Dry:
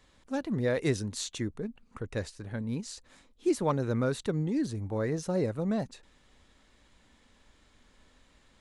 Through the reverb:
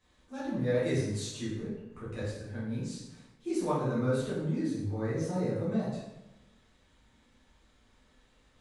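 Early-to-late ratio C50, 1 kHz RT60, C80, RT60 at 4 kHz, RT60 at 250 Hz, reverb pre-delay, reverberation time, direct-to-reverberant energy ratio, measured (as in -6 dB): 0.5 dB, 0.95 s, 4.0 dB, 0.70 s, 1.1 s, 6 ms, 1.0 s, -10.0 dB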